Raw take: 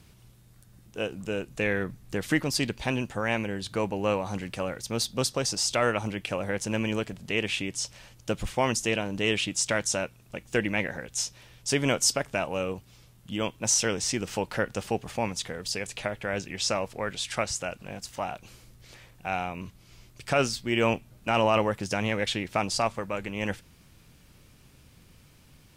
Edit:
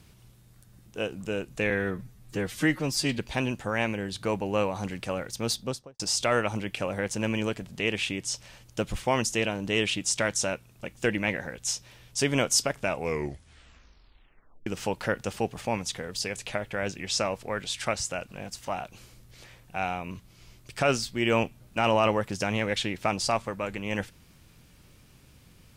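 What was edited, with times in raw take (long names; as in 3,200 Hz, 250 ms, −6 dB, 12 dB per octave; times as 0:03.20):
0:01.70–0:02.69: time-stretch 1.5×
0:05.01–0:05.50: fade out and dull
0:12.35: tape stop 1.82 s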